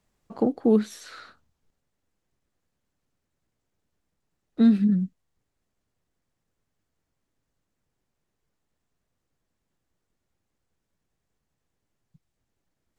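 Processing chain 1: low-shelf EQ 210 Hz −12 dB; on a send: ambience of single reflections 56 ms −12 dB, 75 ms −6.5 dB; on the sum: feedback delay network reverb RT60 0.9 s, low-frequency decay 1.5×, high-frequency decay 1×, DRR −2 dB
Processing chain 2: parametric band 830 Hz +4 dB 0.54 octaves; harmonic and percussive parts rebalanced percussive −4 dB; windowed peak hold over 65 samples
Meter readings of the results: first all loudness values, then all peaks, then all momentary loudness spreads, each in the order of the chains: −23.5, −24.5 LKFS; −9.0, −10.0 dBFS; 20, 12 LU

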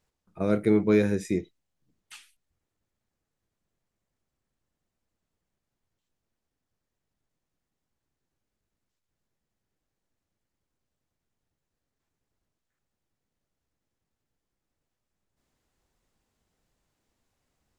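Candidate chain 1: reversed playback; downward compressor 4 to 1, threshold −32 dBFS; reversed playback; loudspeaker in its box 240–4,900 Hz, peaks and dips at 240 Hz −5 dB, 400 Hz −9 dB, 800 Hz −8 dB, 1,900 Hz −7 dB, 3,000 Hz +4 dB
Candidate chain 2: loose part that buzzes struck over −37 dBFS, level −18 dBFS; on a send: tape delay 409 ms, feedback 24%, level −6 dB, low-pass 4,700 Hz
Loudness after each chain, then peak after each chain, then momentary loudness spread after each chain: −42.5, −25.0 LKFS; −27.0, −9.0 dBFS; 12, 15 LU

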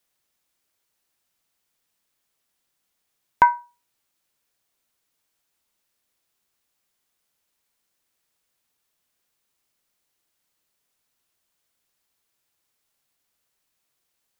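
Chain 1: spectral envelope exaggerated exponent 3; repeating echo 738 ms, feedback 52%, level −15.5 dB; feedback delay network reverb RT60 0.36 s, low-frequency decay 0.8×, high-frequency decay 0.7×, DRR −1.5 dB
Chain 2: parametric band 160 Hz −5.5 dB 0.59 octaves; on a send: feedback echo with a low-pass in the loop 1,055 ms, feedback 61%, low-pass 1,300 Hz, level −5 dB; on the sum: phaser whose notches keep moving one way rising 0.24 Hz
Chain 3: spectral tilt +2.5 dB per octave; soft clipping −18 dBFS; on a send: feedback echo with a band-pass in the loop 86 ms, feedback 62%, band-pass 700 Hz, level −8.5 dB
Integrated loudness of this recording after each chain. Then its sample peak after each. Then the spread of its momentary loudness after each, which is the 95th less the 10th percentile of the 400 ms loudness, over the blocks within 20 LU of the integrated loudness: −24.5, −25.5, −28.5 LKFS; −3.5, −5.5, −18.0 dBFS; 21, 21, 14 LU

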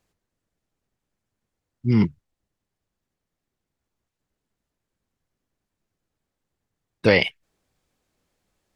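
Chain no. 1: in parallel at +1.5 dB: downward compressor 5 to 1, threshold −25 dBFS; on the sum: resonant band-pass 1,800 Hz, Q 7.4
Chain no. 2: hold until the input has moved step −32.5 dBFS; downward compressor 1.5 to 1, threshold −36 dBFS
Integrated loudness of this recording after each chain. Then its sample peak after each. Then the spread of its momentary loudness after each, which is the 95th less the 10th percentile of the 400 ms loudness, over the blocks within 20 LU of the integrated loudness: −29.0, −29.5 LKFS; −14.0, −11.0 dBFS; 19, 9 LU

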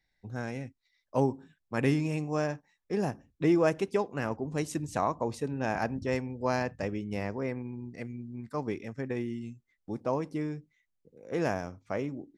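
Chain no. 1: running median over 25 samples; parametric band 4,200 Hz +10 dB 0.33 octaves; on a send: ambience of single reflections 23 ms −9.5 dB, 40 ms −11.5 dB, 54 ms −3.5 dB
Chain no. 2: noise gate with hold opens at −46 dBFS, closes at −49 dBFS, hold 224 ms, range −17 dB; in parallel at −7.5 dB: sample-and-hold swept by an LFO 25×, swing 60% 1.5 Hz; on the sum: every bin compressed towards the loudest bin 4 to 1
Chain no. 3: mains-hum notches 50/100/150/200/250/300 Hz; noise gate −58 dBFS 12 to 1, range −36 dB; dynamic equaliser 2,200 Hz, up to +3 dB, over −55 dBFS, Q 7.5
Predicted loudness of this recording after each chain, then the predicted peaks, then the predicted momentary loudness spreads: −31.5, −33.0, −33.0 LKFS; −12.5, −10.5, −12.0 dBFS; 13, 10, 13 LU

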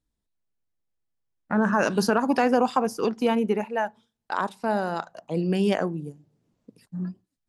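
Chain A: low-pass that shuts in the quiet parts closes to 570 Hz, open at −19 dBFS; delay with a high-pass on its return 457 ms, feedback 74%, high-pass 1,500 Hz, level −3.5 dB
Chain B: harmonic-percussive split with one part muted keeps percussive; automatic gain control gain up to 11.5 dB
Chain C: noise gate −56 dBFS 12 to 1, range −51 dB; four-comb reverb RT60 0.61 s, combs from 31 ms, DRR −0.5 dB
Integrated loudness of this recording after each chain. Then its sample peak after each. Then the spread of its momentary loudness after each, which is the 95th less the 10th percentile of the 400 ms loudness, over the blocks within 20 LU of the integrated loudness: −25.0, −23.5, −21.5 LKFS; −8.5, −1.5, −6.5 dBFS; 15, 21, 16 LU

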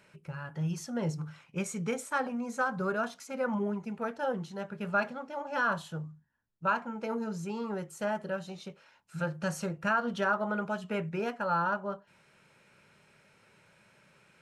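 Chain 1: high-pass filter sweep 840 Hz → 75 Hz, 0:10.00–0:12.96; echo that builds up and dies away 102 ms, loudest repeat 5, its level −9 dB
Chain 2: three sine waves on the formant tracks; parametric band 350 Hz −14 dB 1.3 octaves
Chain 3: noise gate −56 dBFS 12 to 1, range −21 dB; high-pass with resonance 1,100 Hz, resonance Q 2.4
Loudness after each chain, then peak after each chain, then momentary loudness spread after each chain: −29.0, −36.0, −30.0 LKFS; −11.0, −17.0, −10.5 dBFS; 16, 15, 18 LU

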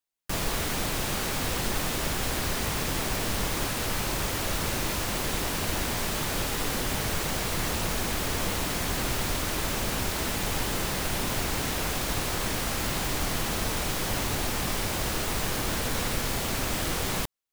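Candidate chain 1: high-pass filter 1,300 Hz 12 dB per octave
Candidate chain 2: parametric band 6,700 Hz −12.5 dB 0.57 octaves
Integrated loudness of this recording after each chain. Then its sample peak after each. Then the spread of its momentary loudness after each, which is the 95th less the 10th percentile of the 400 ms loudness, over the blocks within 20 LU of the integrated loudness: −30.0, −29.5 LKFS; −19.5, −15.5 dBFS; 0, 0 LU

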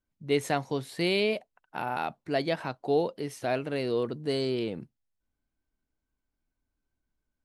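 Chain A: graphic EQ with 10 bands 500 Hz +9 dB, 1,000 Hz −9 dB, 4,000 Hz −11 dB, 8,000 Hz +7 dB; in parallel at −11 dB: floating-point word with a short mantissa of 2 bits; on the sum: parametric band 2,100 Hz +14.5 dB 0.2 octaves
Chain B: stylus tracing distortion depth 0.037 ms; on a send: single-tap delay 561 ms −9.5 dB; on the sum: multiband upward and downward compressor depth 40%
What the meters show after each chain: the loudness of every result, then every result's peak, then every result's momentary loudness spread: −24.0, −30.5 LKFS; −8.0, −13.5 dBFS; 12, 7 LU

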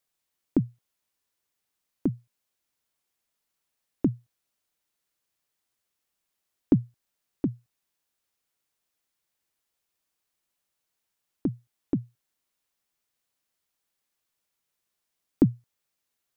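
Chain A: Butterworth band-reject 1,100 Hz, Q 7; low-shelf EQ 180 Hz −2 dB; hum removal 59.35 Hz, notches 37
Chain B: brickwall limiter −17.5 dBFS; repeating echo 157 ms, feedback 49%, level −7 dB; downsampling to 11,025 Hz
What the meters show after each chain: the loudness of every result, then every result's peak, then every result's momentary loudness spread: −31.0, −34.5 LKFS; −9.5, −17.5 dBFS; 17, 20 LU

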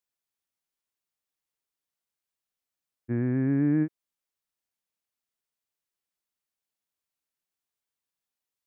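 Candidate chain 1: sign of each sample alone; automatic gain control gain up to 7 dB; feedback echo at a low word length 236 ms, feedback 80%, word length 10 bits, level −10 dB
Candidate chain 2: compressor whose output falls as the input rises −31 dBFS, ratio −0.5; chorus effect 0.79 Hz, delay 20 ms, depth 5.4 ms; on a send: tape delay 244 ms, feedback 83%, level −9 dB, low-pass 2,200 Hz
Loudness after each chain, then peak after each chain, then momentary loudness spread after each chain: −26.0, −38.0 LKFS; −20.0, −21.0 dBFS; 1, 20 LU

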